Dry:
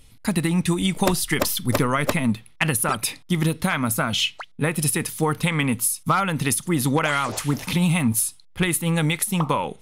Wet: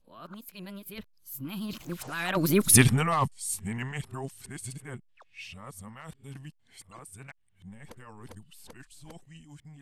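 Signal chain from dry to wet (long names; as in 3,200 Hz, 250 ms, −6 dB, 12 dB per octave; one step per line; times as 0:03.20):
played backwards from end to start
source passing by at 0:02.74, 58 m/s, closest 6.3 metres
low-shelf EQ 82 Hz +7.5 dB
level +5 dB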